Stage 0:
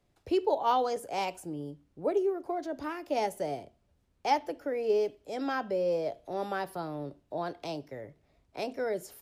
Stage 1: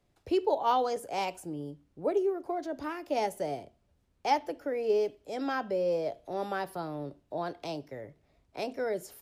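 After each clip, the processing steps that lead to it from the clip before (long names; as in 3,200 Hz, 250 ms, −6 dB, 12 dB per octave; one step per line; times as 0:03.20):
no processing that can be heard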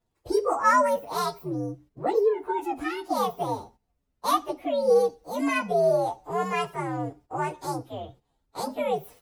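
partials spread apart or drawn together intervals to 125%
noise gate −59 dBFS, range −10 dB
level +8.5 dB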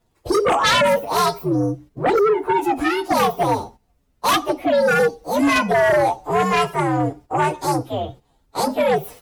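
sine wavefolder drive 11 dB, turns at −9.5 dBFS
level −3 dB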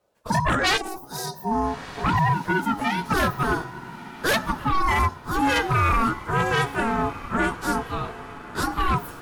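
gain on a spectral selection 0:00.77–0:01.51, 420–4,200 Hz −18 dB
feedback delay with all-pass diffusion 1,341 ms, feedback 44%, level −15 dB
ring modulation 560 Hz
level −1.5 dB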